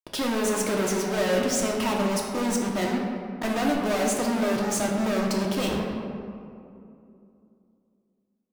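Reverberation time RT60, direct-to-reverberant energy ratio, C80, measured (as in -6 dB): 2.6 s, -1.5 dB, 3.0 dB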